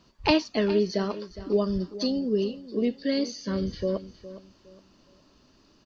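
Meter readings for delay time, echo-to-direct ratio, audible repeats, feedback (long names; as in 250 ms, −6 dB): 412 ms, −14.5 dB, 2, 30%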